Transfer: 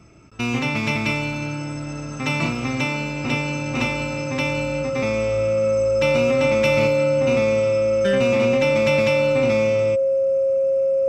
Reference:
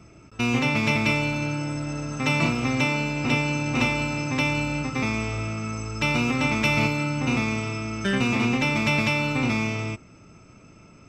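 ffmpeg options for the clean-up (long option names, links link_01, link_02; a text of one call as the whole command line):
ffmpeg -i in.wav -af "bandreject=frequency=540:width=30" out.wav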